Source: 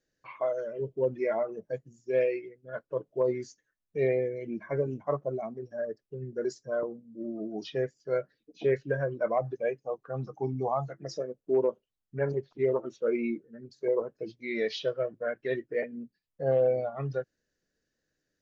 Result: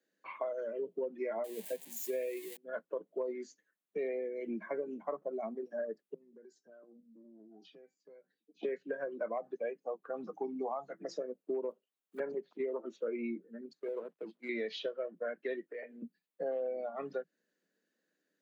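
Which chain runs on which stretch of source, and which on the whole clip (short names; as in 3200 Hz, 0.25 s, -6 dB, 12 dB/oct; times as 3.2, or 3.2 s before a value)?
1.44–2.57 switching spikes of -31.5 dBFS + Butterworth band-stop 1300 Hz, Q 1.9
6.14–8.63 resonator 770 Hz, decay 0.17 s, mix 70% + compressor 12:1, threshold -52 dBFS + cascading phaser falling 1.1 Hz
11.7–12.2 block floating point 7-bit + HPF 290 Hz + hard clip -33 dBFS
13.73–14.49 G.711 law mismatch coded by A + LPF 2600 Hz 6 dB/oct + compressor 2:1, threshold -40 dBFS
15.61–16.02 HPF 480 Hz + compressor 4:1, threshold -41 dBFS + doubler 24 ms -13 dB
whole clip: steep high-pass 170 Hz 96 dB/oct; bell 5500 Hz -9.5 dB 0.48 oct; compressor 6:1, threshold -34 dBFS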